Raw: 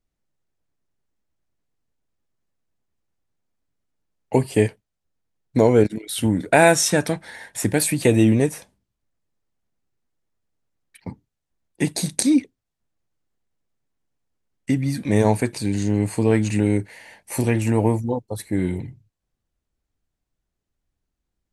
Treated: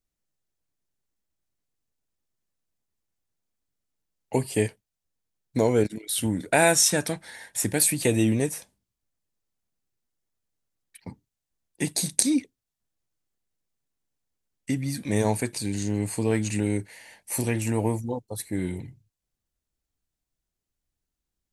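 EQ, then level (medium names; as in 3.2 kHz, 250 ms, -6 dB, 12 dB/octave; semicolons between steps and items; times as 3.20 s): treble shelf 3.7 kHz +9.5 dB; -6.5 dB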